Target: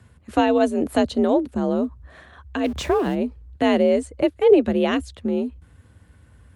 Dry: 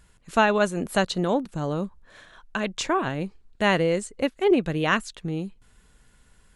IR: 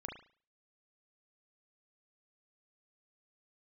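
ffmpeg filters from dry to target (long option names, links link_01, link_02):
-filter_complex "[0:a]asettb=1/sr,asplit=3[link_01][link_02][link_03];[link_01]atrim=end=2.644[link_04];[link_02]atrim=start=2.64:end=3.15,asetpts=PTS-STARTPTS,afade=type=in:duration=0.004:curve=qsin,afade=type=out:start_time=0.506:duration=0.004:curve=qsin,aeval=exprs='val(0)+0.5*0.0188*sgn(val(0))':channel_layout=same[link_05];[link_03]atrim=start=3.146[link_06];[link_04][link_05]acrossfade=duration=0.004:curve1=hsin:curve2=qsin[link_07];[link_07][link_06]acrossfade=duration=0.004:curve1=qsin:curve2=hsin,highshelf=frequency=2500:gain=-10,acrossover=split=700|2300[link_08][link_09][link_10];[link_09]acompressor=threshold=-42dB:ratio=10[link_11];[link_08][link_11][link_10]amix=inputs=3:normalize=0,afreqshift=54,volume=6.5dB" -ar 48000 -c:a libopus -b:a 48k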